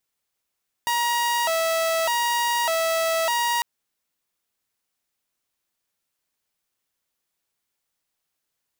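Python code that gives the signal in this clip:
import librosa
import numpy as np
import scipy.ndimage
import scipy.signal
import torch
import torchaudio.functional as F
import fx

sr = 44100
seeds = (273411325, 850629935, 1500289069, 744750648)

y = fx.siren(sr, length_s=2.75, kind='hi-lo', low_hz=654.0, high_hz=948.0, per_s=0.83, wave='saw', level_db=-18.0)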